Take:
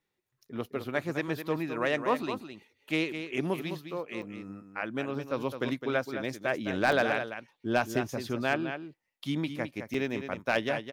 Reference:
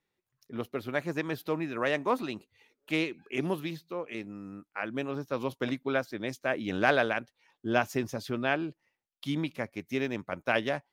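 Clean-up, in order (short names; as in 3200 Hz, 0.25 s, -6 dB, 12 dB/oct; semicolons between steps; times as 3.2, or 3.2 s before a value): clip repair -15.5 dBFS; interpolate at 4.22/6.92/9.94, 3.6 ms; inverse comb 0.21 s -9 dB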